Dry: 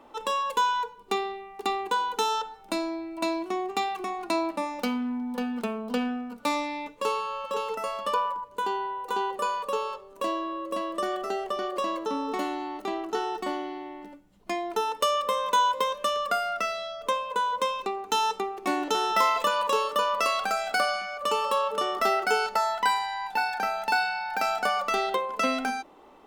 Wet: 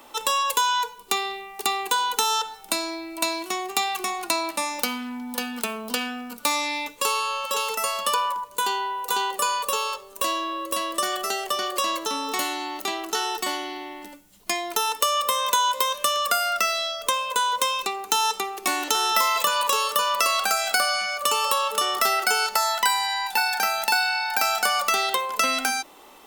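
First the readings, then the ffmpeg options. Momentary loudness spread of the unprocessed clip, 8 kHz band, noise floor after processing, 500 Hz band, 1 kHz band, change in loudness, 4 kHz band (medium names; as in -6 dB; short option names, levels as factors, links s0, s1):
7 LU, +14.0 dB, -47 dBFS, -1.5 dB, +2.5 dB, +4.5 dB, +9.0 dB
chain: -filter_complex "[0:a]crystalizer=i=9:c=0,acrossover=split=780|1700[s0][s1][s2];[s0]acompressor=threshold=0.0251:ratio=4[s3];[s1]acompressor=threshold=0.0708:ratio=4[s4];[s2]acompressor=threshold=0.0631:ratio=4[s5];[s3][s4][s5]amix=inputs=3:normalize=0"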